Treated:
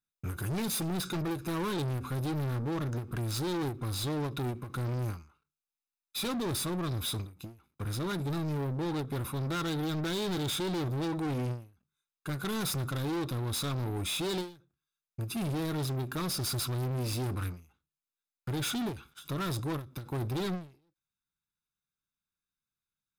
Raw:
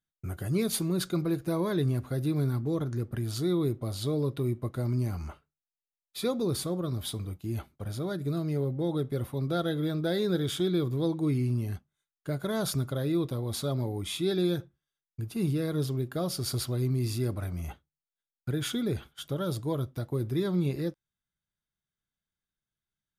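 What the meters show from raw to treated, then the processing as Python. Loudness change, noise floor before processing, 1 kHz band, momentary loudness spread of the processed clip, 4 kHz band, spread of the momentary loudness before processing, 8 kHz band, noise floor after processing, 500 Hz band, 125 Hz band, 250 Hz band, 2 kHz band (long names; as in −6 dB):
−3.0 dB, below −85 dBFS, +3.0 dB, 8 LU, +1.0 dB, 9 LU, +1.0 dB, below −85 dBFS, −6.0 dB, −3.5 dB, −4.0 dB, +2.5 dB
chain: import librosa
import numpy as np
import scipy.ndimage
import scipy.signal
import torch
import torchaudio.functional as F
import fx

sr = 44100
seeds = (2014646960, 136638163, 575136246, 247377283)

y = fx.low_shelf(x, sr, hz=210.0, db=-8.0)
y = y + 0.78 * np.pad(y, (int(0.8 * sr / 1000.0), 0))[:len(y)]
y = np.clip(10.0 ** (30.5 / 20.0) * y, -1.0, 1.0) / 10.0 ** (30.5 / 20.0)
y = fx.leveller(y, sr, passes=2)
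y = fx.end_taper(y, sr, db_per_s=150.0)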